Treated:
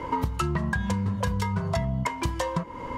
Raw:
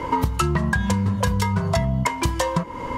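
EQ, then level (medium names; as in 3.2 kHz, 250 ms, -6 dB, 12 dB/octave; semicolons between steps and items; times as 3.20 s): treble shelf 5 kHz -5 dB; -5.5 dB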